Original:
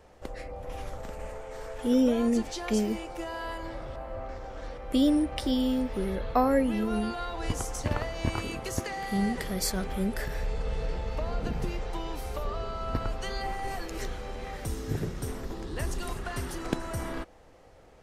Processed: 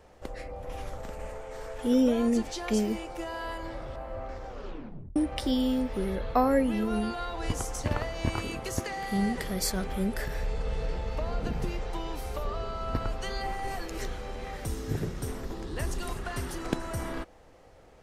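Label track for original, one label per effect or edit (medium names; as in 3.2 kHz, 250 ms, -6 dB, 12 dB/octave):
4.500000	4.500000	tape stop 0.66 s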